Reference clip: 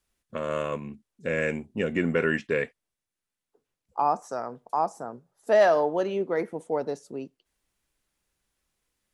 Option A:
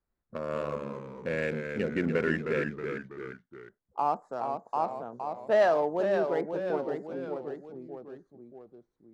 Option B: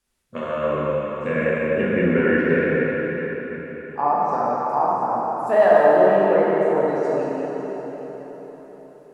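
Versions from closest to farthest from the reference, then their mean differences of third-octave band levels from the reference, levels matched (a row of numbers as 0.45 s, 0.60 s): A, B; 5.0 dB, 8.0 dB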